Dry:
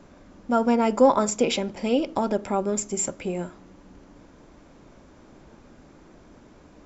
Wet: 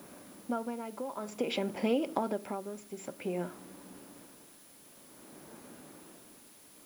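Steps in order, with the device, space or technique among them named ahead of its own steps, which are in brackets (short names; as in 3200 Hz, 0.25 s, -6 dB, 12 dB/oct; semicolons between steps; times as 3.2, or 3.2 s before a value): medium wave at night (BPF 170–3500 Hz; compressor, threshold -25 dBFS, peak gain reduction 13 dB; tremolo 0.53 Hz, depth 75%; whine 10000 Hz -60 dBFS; white noise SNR 21 dB)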